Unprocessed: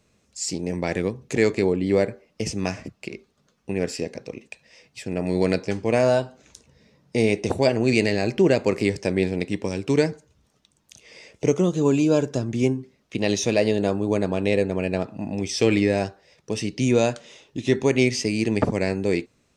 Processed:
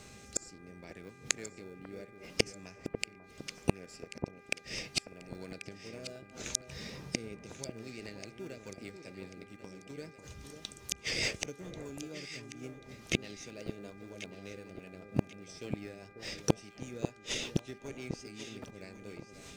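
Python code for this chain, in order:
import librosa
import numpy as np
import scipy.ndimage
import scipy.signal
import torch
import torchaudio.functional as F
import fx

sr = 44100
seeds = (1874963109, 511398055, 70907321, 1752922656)

p1 = fx.high_shelf(x, sr, hz=2200.0, db=8.5)
p2 = fx.sample_hold(p1, sr, seeds[0], rate_hz=1000.0, jitter_pct=0)
p3 = p1 + F.gain(torch.from_numpy(p2), -10.5).numpy()
p4 = fx.rotary_switch(p3, sr, hz=0.7, then_hz=5.0, switch_at_s=7.08)
p5 = fx.gate_flip(p4, sr, shuts_db=-24.0, range_db=-37)
p6 = fx.dmg_buzz(p5, sr, base_hz=400.0, harmonics=6, level_db=-71.0, tilt_db=-1, odd_only=False)
p7 = p6 + fx.echo_alternate(p6, sr, ms=544, hz=1200.0, feedback_pct=57, wet_db=-7.5, dry=0)
y = F.gain(torch.from_numpy(p7), 11.0).numpy()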